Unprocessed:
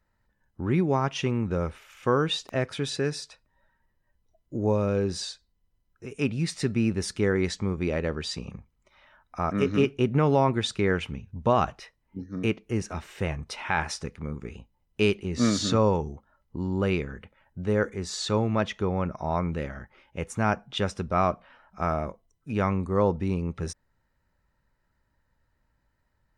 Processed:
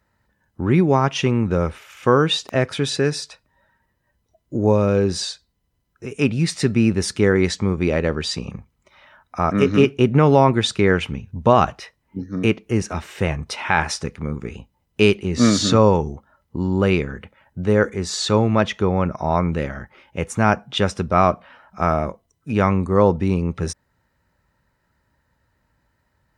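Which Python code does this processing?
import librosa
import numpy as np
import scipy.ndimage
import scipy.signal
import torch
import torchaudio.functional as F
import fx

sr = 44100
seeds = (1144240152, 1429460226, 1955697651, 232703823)

y = scipy.signal.sosfilt(scipy.signal.butter(2, 60.0, 'highpass', fs=sr, output='sos'), x)
y = y * librosa.db_to_amplitude(8.0)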